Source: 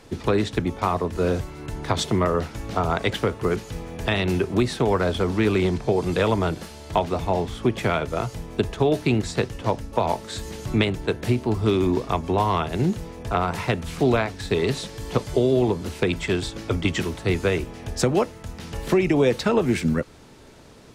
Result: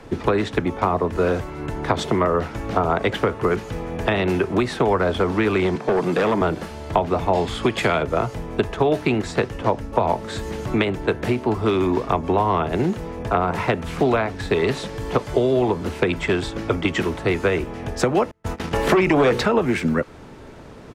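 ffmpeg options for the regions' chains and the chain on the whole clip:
ffmpeg -i in.wav -filter_complex "[0:a]asettb=1/sr,asplit=3[link_01][link_02][link_03];[link_01]atrim=end=5.754[link_04];[link_02]atrim=start=5.75:end=6.41,asetpts=PTS-STARTPTS,afade=type=in:duration=0.004:curve=qsin,afade=type=out:start_time=0.656:duration=0.004:curve=qsin,highpass=frequency=150:width=0.5412,highpass=frequency=150:width=1.3066,asoftclip=type=hard:threshold=-19.5dB[link_05];[link_03]atrim=start=6.406[link_06];[link_04][link_05]acrossfade=duration=0.004:curve1=hsin:curve2=qsin[link_07];[link_07][link_06]acrossfade=duration=0.004:curve1=qsin:curve2=hsin,asettb=1/sr,asplit=3[link_08][link_09][link_10];[link_08]atrim=end=7.334[link_11];[link_09]atrim=start=7.33:end=8.03,asetpts=PTS-STARTPTS,afade=type=in:duration=0.004:curve=qsin,afade=type=out:start_time=0.696:duration=0.004:curve=qsin,equalizer=frequency=5700:width=0.5:gain=11.5,bandreject=frequency=5800:width=6.4[link_12];[link_10]atrim=start=8.026[link_13];[link_11][link_12]acrossfade=duration=0.004:curve1=hsin:curve2=qsin[link_14];[link_14][link_13]acrossfade=duration=0.004:curve1=qsin:curve2=hsin,asettb=1/sr,asplit=3[link_15][link_16][link_17];[link_15]atrim=end=18.314[link_18];[link_16]atrim=start=18.31:end=19.46,asetpts=PTS-STARTPTS,afade=type=in:duration=0.004:curve=qsin,afade=type=out:start_time=1.146:duration=0.004:curve=qsin,bandreject=frequency=60:width_type=h:width=6,bandreject=frequency=120:width_type=h:width=6,bandreject=frequency=180:width_type=h:width=6,bandreject=frequency=240:width_type=h:width=6,bandreject=frequency=300:width_type=h:width=6,bandreject=frequency=360:width_type=h:width=6,bandreject=frequency=420:width_type=h:width=6,bandreject=frequency=480:width_type=h:width=6,bandreject=frequency=540:width_type=h:width=6,agate=range=-41dB:threshold=-37dB:ratio=16:release=100:detection=peak,aeval=exprs='0.376*sin(PI/2*1.78*val(0)/0.376)':channel_layout=same[link_19];[link_17]atrim=start=19.456[link_20];[link_18][link_19]acrossfade=duration=0.004:curve1=hsin:curve2=qsin[link_21];[link_21][link_20]acrossfade=duration=0.004:curve1=qsin:curve2=hsin,firequalizer=gain_entry='entry(1300,0);entry(4100,-9);entry(9500,-11)':delay=0.05:min_phase=1,acrossover=split=230|660[link_22][link_23][link_24];[link_22]acompressor=threshold=-36dB:ratio=4[link_25];[link_23]acompressor=threshold=-28dB:ratio=4[link_26];[link_24]acompressor=threshold=-28dB:ratio=4[link_27];[link_25][link_26][link_27]amix=inputs=3:normalize=0,volume=7.5dB" out.wav

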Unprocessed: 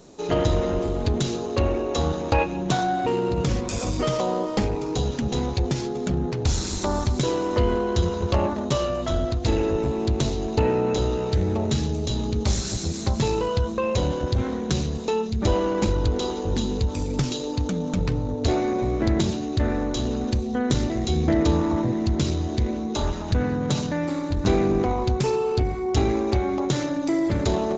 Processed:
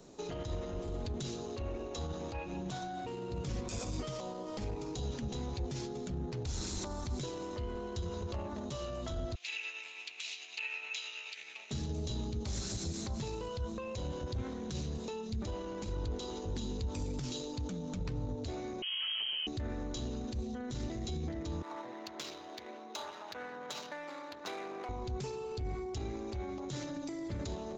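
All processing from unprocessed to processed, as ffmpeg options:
ffmpeg -i in.wav -filter_complex "[0:a]asettb=1/sr,asplit=3[link_01][link_02][link_03];[link_01]atrim=end=9.354[link_04];[link_02]atrim=start=9.35:end=11.71,asetpts=PTS-STARTPTS,afade=type=in:duration=0.004:curve=qsin,afade=type=out:start_time=2.356:duration=0.004:curve=qsin,highpass=frequency=2500:width_type=q:width=5.9,tremolo=f=9.3:d=0.34[link_05];[link_03]atrim=start=11.706[link_06];[link_04][link_05]acrossfade=duration=0.004:curve1=hsin:curve2=qsin[link_07];[link_07][link_06]acrossfade=duration=0.004:curve1=qsin:curve2=hsin,asettb=1/sr,asplit=3[link_08][link_09][link_10];[link_08]atrim=end=18.824[link_11];[link_09]atrim=start=18.82:end=19.47,asetpts=PTS-STARTPTS,afade=type=in:duration=0.004:curve=qsin,afade=type=out:start_time=0.646:duration=0.004:curve=qsin,volume=22.5dB,asoftclip=hard,volume=-22.5dB,lowpass=frequency=2800:width_type=q:width=0.5098,lowpass=frequency=2800:width_type=q:width=0.6013,lowpass=frequency=2800:width_type=q:width=0.9,lowpass=frequency=2800:width_type=q:width=2.563,afreqshift=-3300[link_12];[link_10]atrim=start=19.466[link_13];[link_11][link_12]acrossfade=duration=0.004:curve1=hsin:curve2=qsin[link_14];[link_14][link_13]acrossfade=duration=0.004:curve1=qsin:curve2=hsin,asettb=1/sr,asplit=3[link_15][link_16][link_17];[link_15]atrim=end=21.624[link_18];[link_16]atrim=start=21.62:end=24.89,asetpts=PTS-STARTPTS,afade=type=in:duration=0.004:curve=qsin,afade=type=out:start_time=3.266:duration=0.004:curve=qsin,highpass=770,adynamicsmooth=sensitivity=5:basefreq=3500[link_19];[link_17]atrim=start=24.886[link_20];[link_18][link_19]acrossfade=duration=0.004:curve1=hsin:curve2=qsin[link_21];[link_21][link_20]acrossfade=duration=0.004:curve1=qsin:curve2=hsin,acompressor=threshold=-22dB:ratio=6,alimiter=limit=-20.5dB:level=0:latency=1:release=59,acrossover=split=140|3000[link_22][link_23][link_24];[link_23]acompressor=threshold=-32dB:ratio=6[link_25];[link_22][link_25][link_24]amix=inputs=3:normalize=0,volume=-7dB" out.wav

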